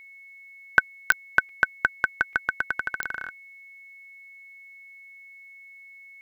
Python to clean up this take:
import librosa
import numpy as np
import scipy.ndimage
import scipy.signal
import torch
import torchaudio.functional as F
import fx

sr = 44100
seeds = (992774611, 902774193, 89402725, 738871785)

y = fx.fix_declick_ar(x, sr, threshold=10.0)
y = fx.notch(y, sr, hz=2200.0, q=30.0)
y = fx.fix_interpolate(y, sr, at_s=(1.1, 1.49, 2.33), length_ms=2.5)